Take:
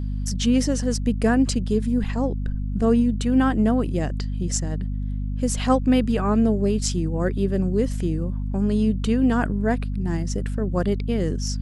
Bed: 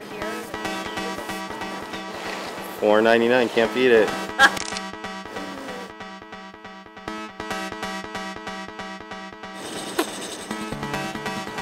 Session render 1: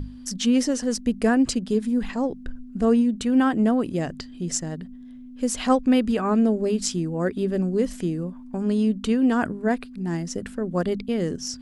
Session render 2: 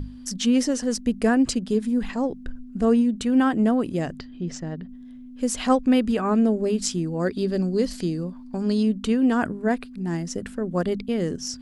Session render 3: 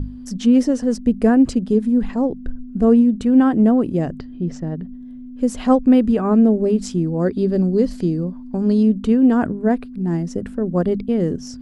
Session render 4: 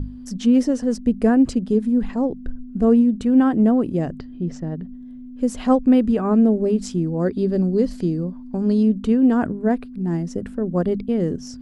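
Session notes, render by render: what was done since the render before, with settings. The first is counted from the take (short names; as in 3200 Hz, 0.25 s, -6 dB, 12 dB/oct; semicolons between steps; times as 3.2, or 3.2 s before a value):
notches 50/100/150/200 Hz
4.19–4.89 air absorption 170 m; 7.07–8.83 bell 4500 Hz +14 dB 0.41 oct
tilt shelf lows +7 dB, about 1200 Hz
gain -2 dB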